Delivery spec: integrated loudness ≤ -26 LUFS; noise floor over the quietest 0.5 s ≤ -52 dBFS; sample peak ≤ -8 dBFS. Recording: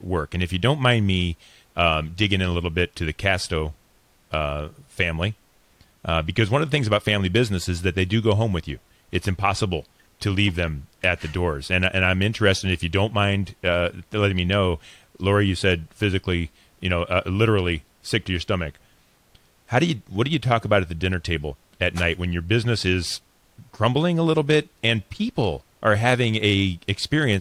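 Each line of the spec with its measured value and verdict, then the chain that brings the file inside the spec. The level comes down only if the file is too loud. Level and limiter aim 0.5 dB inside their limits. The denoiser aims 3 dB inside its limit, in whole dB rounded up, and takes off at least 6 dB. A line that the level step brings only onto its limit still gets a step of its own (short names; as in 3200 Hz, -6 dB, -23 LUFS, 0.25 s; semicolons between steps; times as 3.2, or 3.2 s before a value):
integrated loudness -22.5 LUFS: fail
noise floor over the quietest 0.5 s -59 dBFS: OK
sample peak -5.5 dBFS: fail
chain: gain -4 dB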